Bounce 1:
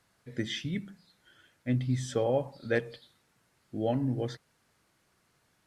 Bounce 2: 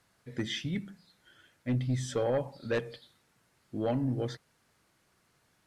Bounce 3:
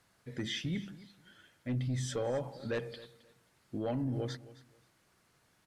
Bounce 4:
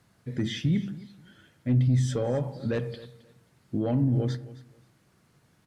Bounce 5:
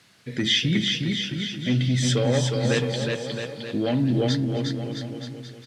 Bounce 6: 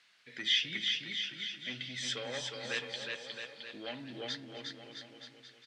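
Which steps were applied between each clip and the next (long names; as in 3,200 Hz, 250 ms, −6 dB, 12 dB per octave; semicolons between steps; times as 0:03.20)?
sine wavefolder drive 5 dB, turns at −14.5 dBFS; level −8.5 dB
brickwall limiter −28 dBFS, peak gain reduction 5 dB; repeating echo 266 ms, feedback 22%, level −18 dB
parametric band 140 Hz +10.5 dB 2.8 octaves; on a send at −14 dB: convolution reverb RT60 0.50 s, pre-delay 11 ms; on the sum: level +1.5 dB
meter weighting curve D; on a send: bouncing-ball delay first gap 360 ms, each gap 0.85×, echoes 5; on the sum: level +4.5 dB
resonant band-pass 2,500 Hz, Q 0.8; level −6 dB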